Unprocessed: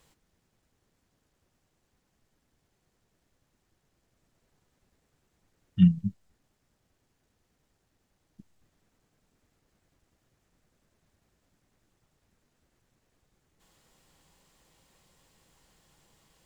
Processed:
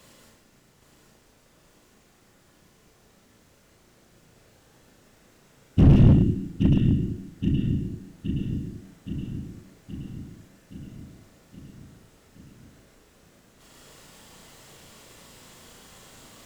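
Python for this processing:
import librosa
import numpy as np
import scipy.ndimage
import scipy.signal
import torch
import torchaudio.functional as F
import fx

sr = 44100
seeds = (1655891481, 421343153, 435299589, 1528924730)

p1 = scipy.signal.sosfilt(scipy.signal.butter(2, 59.0, 'highpass', fs=sr, output='sos'), x)
p2 = fx.notch(p1, sr, hz=830.0, q=12.0)
p3 = fx.over_compress(p2, sr, threshold_db=-20.0, ratio=-0.5)
p4 = p2 + F.gain(torch.from_numpy(p3), 0.5).numpy()
p5 = fx.whisperise(p4, sr, seeds[0])
p6 = fx.doubler(p5, sr, ms=36.0, db=-2.5)
p7 = p6 + fx.echo_feedback(p6, sr, ms=821, feedback_pct=60, wet_db=-8, dry=0)
p8 = fx.rev_plate(p7, sr, seeds[1], rt60_s=0.84, hf_ratio=0.9, predelay_ms=100, drr_db=-1.0)
p9 = fx.slew_limit(p8, sr, full_power_hz=33.0)
y = F.gain(torch.from_numpy(p9), 2.5).numpy()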